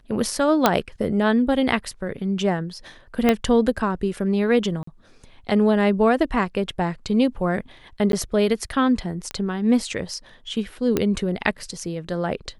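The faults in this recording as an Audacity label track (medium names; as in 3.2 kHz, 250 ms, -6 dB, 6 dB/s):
0.660000	0.660000	pop 0 dBFS
3.290000	3.290000	pop -5 dBFS
4.830000	4.870000	dropout 44 ms
8.120000	8.130000	dropout 12 ms
9.310000	9.310000	pop -14 dBFS
10.970000	10.970000	pop -7 dBFS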